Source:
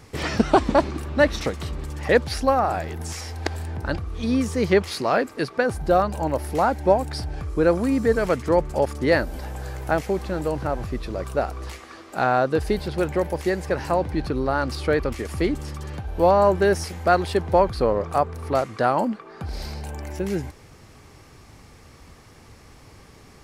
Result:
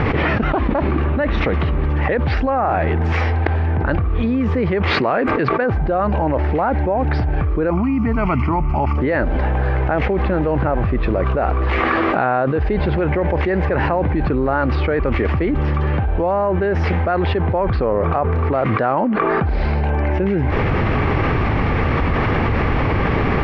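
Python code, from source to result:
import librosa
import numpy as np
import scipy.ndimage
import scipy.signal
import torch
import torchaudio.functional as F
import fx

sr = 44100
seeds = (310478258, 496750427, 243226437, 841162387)

y = fx.fixed_phaser(x, sr, hz=2500.0, stages=8, at=(7.7, 8.98))
y = scipy.signal.sosfilt(scipy.signal.butter(4, 2600.0, 'lowpass', fs=sr, output='sos'), y)
y = fx.env_flatten(y, sr, amount_pct=100)
y = F.gain(torch.from_numpy(y), -5.5).numpy()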